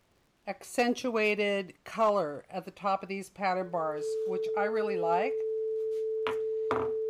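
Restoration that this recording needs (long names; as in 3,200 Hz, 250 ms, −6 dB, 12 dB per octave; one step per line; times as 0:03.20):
clipped peaks rebuilt −18 dBFS
click removal
notch filter 440 Hz, Q 30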